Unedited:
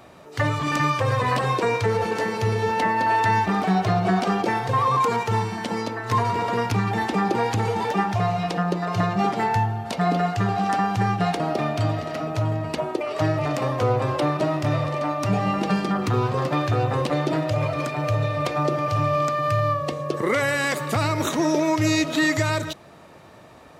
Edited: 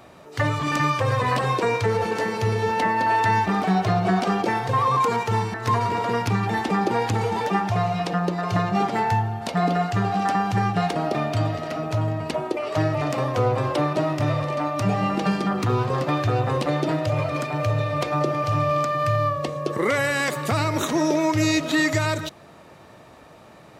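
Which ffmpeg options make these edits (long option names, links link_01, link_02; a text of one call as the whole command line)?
ffmpeg -i in.wav -filter_complex "[0:a]asplit=2[link_01][link_02];[link_01]atrim=end=5.542[link_03];[link_02]atrim=start=5.978[link_04];[link_03][link_04]acrossfade=duration=0.004:curve1=hsin:curve2=hsin" out.wav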